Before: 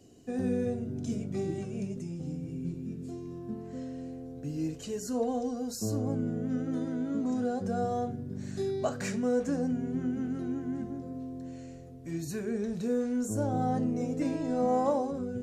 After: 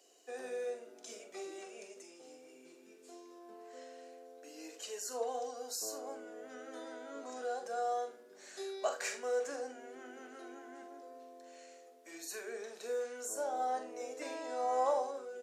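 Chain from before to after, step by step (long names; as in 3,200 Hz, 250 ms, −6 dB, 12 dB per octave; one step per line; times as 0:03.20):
Bessel high-pass filter 690 Hz, order 6
ambience of single reflections 43 ms −9 dB, 79 ms −16.5 dB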